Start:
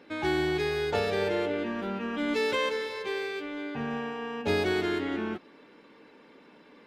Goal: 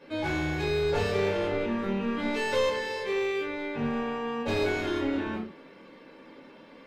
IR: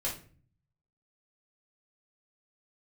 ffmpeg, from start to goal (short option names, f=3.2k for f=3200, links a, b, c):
-filter_complex "[0:a]asoftclip=type=tanh:threshold=-27.5dB[a];[1:a]atrim=start_sample=2205,afade=t=out:st=0.22:d=0.01,atrim=end_sample=10143[b];[a][b]afir=irnorm=-1:irlink=0"